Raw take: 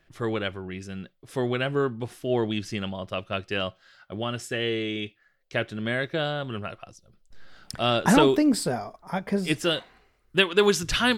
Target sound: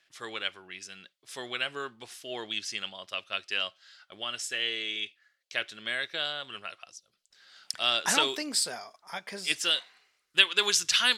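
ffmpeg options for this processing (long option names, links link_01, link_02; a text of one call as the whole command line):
ffmpeg -i in.wav -af "bandpass=frequency=5600:width_type=q:width=0.72:csg=0,volume=5.5dB" out.wav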